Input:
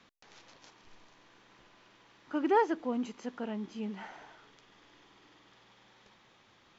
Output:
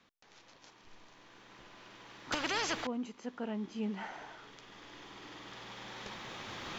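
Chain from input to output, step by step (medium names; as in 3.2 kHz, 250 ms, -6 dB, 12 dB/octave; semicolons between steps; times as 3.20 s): recorder AGC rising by 6.6 dB/s; 2.32–2.87 s: spectrum-flattening compressor 4:1; trim -5.5 dB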